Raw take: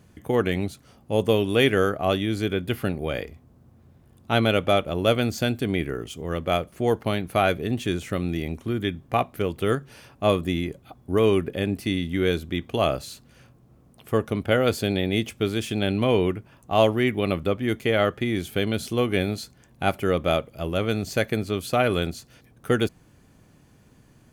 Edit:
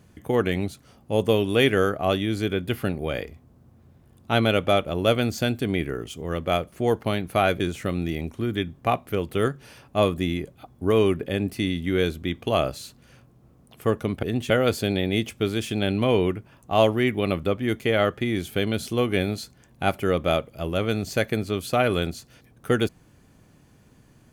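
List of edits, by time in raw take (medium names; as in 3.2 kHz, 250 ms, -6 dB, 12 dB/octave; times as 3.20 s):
7.60–7.87 s: move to 14.50 s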